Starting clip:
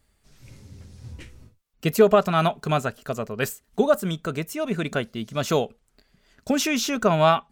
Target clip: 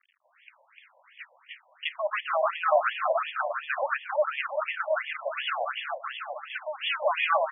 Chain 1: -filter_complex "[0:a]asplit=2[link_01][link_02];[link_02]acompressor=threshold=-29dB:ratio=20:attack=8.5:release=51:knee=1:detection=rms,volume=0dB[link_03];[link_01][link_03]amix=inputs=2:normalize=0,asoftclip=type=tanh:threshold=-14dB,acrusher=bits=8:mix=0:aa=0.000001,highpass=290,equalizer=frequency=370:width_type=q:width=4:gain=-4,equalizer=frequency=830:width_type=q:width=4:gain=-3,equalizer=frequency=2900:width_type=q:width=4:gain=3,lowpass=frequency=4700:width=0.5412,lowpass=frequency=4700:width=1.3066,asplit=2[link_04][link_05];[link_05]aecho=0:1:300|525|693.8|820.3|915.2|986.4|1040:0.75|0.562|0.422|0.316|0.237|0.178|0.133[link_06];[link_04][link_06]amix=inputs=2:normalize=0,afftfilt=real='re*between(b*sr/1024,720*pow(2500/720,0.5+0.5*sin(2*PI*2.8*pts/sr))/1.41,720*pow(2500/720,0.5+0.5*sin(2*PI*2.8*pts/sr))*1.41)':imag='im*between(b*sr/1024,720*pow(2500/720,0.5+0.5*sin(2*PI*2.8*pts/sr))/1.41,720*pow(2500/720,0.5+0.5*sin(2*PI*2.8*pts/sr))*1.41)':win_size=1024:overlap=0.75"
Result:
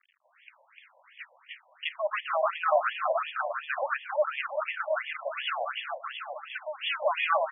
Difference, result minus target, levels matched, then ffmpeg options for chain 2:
downward compressor: peak gain reduction +10.5 dB
-filter_complex "[0:a]asplit=2[link_01][link_02];[link_02]acompressor=threshold=-18dB:ratio=20:attack=8.5:release=51:knee=1:detection=rms,volume=0dB[link_03];[link_01][link_03]amix=inputs=2:normalize=0,asoftclip=type=tanh:threshold=-14dB,acrusher=bits=8:mix=0:aa=0.000001,highpass=290,equalizer=frequency=370:width_type=q:width=4:gain=-4,equalizer=frequency=830:width_type=q:width=4:gain=-3,equalizer=frequency=2900:width_type=q:width=4:gain=3,lowpass=frequency=4700:width=0.5412,lowpass=frequency=4700:width=1.3066,asplit=2[link_04][link_05];[link_05]aecho=0:1:300|525|693.8|820.3|915.2|986.4|1040:0.75|0.562|0.422|0.316|0.237|0.178|0.133[link_06];[link_04][link_06]amix=inputs=2:normalize=0,afftfilt=real='re*between(b*sr/1024,720*pow(2500/720,0.5+0.5*sin(2*PI*2.8*pts/sr))/1.41,720*pow(2500/720,0.5+0.5*sin(2*PI*2.8*pts/sr))*1.41)':imag='im*between(b*sr/1024,720*pow(2500/720,0.5+0.5*sin(2*PI*2.8*pts/sr))/1.41,720*pow(2500/720,0.5+0.5*sin(2*PI*2.8*pts/sr))*1.41)':win_size=1024:overlap=0.75"

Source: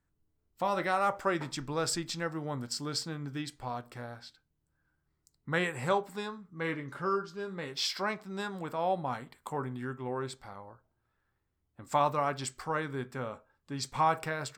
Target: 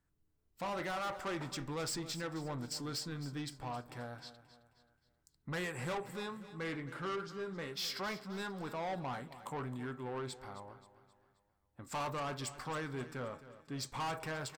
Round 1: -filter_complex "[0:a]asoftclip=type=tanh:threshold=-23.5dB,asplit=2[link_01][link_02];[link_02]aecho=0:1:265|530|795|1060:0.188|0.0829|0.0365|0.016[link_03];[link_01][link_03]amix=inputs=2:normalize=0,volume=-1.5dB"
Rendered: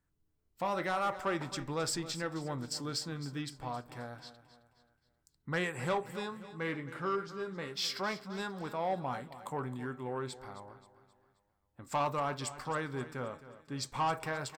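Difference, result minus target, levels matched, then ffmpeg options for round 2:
soft clipping: distortion −8 dB
-filter_complex "[0:a]asoftclip=type=tanh:threshold=-33.5dB,asplit=2[link_01][link_02];[link_02]aecho=0:1:265|530|795|1060:0.188|0.0829|0.0365|0.016[link_03];[link_01][link_03]amix=inputs=2:normalize=0,volume=-1.5dB"

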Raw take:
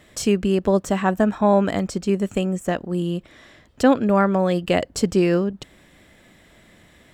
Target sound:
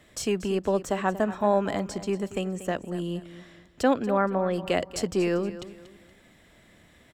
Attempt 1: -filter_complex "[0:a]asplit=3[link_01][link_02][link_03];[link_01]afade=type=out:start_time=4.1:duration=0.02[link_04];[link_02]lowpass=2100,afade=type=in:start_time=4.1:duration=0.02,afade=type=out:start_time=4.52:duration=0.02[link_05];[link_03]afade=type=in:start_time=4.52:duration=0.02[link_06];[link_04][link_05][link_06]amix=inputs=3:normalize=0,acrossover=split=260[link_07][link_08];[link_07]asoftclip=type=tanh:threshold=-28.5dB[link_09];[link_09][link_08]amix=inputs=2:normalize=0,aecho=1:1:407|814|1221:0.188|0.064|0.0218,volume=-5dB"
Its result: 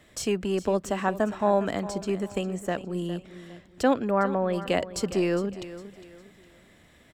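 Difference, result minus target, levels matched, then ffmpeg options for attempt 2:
echo 172 ms late
-filter_complex "[0:a]asplit=3[link_01][link_02][link_03];[link_01]afade=type=out:start_time=4.1:duration=0.02[link_04];[link_02]lowpass=2100,afade=type=in:start_time=4.1:duration=0.02,afade=type=out:start_time=4.52:duration=0.02[link_05];[link_03]afade=type=in:start_time=4.52:duration=0.02[link_06];[link_04][link_05][link_06]amix=inputs=3:normalize=0,acrossover=split=260[link_07][link_08];[link_07]asoftclip=type=tanh:threshold=-28.5dB[link_09];[link_09][link_08]amix=inputs=2:normalize=0,aecho=1:1:235|470|705:0.188|0.064|0.0218,volume=-5dB"

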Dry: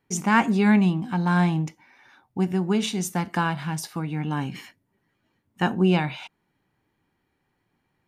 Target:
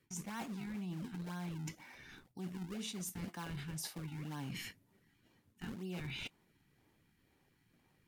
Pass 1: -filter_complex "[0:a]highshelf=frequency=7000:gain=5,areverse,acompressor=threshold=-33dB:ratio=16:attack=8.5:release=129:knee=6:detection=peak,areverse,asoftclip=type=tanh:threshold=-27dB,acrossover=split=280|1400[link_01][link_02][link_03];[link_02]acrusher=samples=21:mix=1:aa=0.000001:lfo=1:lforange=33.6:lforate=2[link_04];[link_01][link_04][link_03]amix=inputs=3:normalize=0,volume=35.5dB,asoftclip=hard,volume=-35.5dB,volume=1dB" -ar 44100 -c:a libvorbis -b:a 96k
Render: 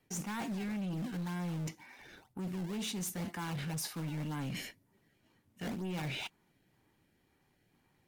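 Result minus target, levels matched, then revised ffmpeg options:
downward compressor: peak gain reduction −7.5 dB; sample-and-hold swept by an LFO: distortion −7 dB
-filter_complex "[0:a]highshelf=frequency=7000:gain=5,areverse,acompressor=threshold=-41dB:ratio=16:attack=8.5:release=129:knee=6:detection=peak,areverse,asoftclip=type=tanh:threshold=-27dB,acrossover=split=280|1400[link_01][link_02][link_03];[link_02]acrusher=samples=44:mix=1:aa=0.000001:lfo=1:lforange=70.4:lforate=2[link_04];[link_01][link_04][link_03]amix=inputs=3:normalize=0,volume=35.5dB,asoftclip=hard,volume=-35.5dB,volume=1dB" -ar 44100 -c:a libvorbis -b:a 96k

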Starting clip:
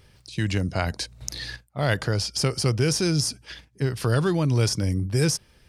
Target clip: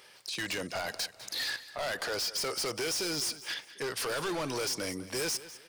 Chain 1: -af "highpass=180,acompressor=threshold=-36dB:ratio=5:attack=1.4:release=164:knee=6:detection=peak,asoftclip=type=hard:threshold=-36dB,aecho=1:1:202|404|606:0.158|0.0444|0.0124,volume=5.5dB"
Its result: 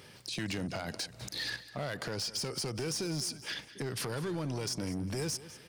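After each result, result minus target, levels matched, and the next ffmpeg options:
downward compressor: peak gain reduction +10.5 dB; 250 Hz band +5.5 dB
-af "highpass=180,acompressor=threshold=-25dB:ratio=5:attack=1.4:release=164:knee=6:detection=peak,asoftclip=type=hard:threshold=-36dB,aecho=1:1:202|404|606:0.158|0.0444|0.0124,volume=5.5dB"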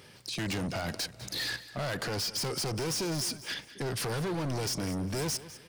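250 Hz band +5.0 dB
-af "highpass=580,acompressor=threshold=-25dB:ratio=5:attack=1.4:release=164:knee=6:detection=peak,asoftclip=type=hard:threshold=-36dB,aecho=1:1:202|404|606:0.158|0.0444|0.0124,volume=5.5dB"

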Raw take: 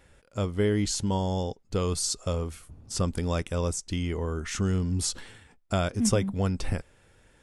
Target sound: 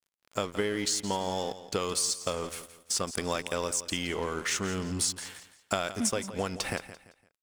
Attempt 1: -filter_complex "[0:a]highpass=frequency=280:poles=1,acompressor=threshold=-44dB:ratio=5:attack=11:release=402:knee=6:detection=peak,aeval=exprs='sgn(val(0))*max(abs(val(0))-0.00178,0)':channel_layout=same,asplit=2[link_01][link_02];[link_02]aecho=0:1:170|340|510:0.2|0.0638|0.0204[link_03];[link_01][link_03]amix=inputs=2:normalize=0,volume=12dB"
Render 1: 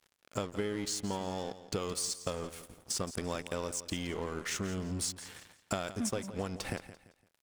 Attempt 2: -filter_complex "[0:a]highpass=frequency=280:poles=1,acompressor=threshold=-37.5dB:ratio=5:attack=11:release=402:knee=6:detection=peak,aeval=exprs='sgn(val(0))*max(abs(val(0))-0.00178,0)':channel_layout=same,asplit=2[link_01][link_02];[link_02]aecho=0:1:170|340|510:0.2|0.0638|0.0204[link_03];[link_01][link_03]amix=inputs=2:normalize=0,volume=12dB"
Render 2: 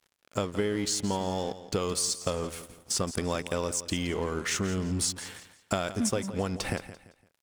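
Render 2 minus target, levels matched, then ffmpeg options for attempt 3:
250 Hz band +3.0 dB
-filter_complex "[0:a]highpass=frequency=750:poles=1,acompressor=threshold=-37.5dB:ratio=5:attack=11:release=402:knee=6:detection=peak,aeval=exprs='sgn(val(0))*max(abs(val(0))-0.00178,0)':channel_layout=same,asplit=2[link_01][link_02];[link_02]aecho=0:1:170|340|510:0.2|0.0638|0.0204[link_03];[link_01][link_03]amix=inputs=2:normalize=0,volume=12dB"

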